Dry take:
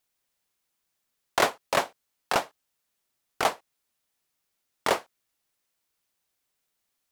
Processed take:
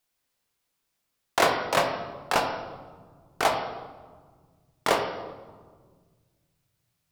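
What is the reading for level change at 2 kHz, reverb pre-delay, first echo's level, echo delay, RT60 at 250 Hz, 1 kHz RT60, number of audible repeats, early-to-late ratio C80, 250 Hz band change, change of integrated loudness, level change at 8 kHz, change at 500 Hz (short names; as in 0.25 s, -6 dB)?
+2.0 dB, 19 ms, none, none, 2.5 s, 1.5 s, none, 10.5 dB, +3.5 dB, +1.0 dB, 0.0 dB, +3.0 dB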